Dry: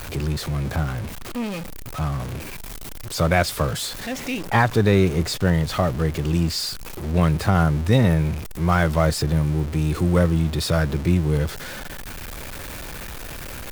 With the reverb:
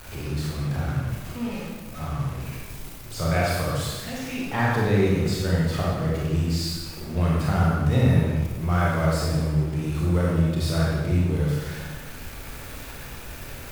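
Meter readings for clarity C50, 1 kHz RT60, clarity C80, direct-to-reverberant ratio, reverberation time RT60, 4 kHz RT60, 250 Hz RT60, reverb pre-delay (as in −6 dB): −2.0 dB, 1.2 s, 1.5 dB, −5.0 dB, 1.3 s, 1.1 s, 1.6 s, 27 ms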